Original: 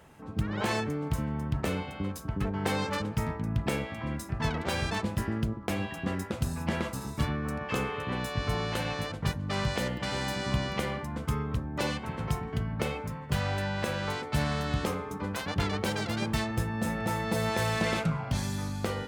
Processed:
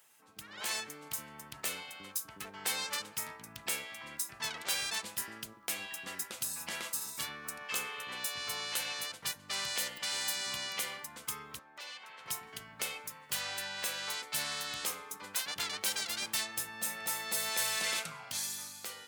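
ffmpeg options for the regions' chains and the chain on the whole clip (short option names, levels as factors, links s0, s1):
-filter_complex "[0:a]asettb=1/sr,asplit=3[s0][s1][s2];[s0]atrim=end=11.594[s3];[s1]atrim=start=11.59:end=12.26,asetpts=PTS-STARTPTS,afade=t=in:d=0.004:c=qsin,afade=t=out:st=0.666:d=0.004:c=qsin,acrossover=split=430 5300:gain=0.2 1 0.178[s4][s5][s6];[s4][s5][s6]amix=inputs=3:normalize=0,acompressor=threshold=0.01:ratio=3:attack=3.2:release=140:knee=1:detection=peak,highpass=84[s7];[s2]atrim=start=12.256[s8];[s3][s7]acrossfade=d=0.004:c1=hsin:c2=qsin[s9];[s9][s8]acrossfade=d=0.004:c1=qsin:c2=hsin,aderivative,dynaudnorm=f=130:g=11:m=1.78,volume=1.41"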